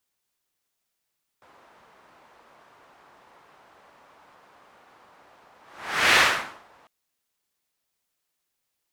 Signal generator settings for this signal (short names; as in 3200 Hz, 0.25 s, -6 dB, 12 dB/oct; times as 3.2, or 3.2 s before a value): whoosh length 5.45 s, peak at 4.74, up 0.59 s, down 0.56 s, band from 970 Hz, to 2000 Hz, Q 1.3, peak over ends 38.5 dB